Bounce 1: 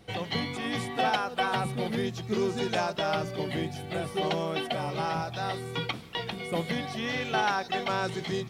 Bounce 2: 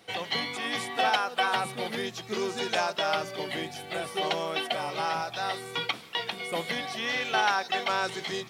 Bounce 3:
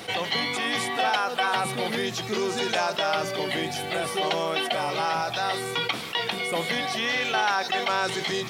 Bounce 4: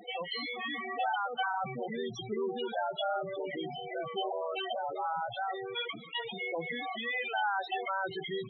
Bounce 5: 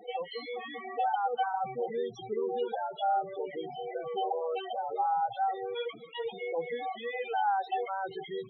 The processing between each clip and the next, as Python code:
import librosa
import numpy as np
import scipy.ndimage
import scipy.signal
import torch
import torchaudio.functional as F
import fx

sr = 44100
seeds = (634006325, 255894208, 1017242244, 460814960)

y1 = fx.highpass(x, sr, hz=760.0, slope=6)
y1 = y1 * 10.0 ** (4.0 / 20.0)
y2 = fx.env_flatten(y1, sr, amount_pct=50)
y3 = fx.spec_topn(y2, sr, count=8)
y3 = y3 * 10.0 ** (-5.5 / 20.0)
y4 = fx.small_body(y3, sr, hz=(470.0, 790.0), ring_ms=45, db=16)
y4 = y4 * 10.0 ** (-7.0 / 20.0)